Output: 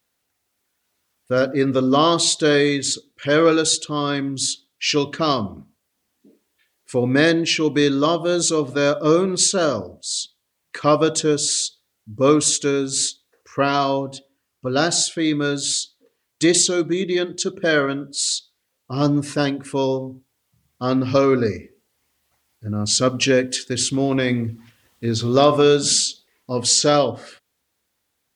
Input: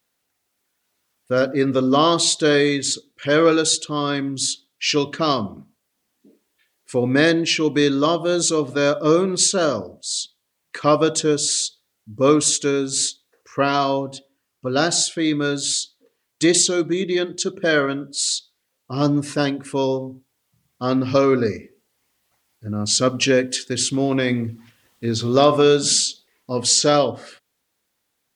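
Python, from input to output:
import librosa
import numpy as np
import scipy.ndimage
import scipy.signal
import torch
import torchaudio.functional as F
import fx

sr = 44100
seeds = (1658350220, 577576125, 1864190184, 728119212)

y = fx.peak_eq(x, sr, hz=72.0, db=7.5, octaves=0.74)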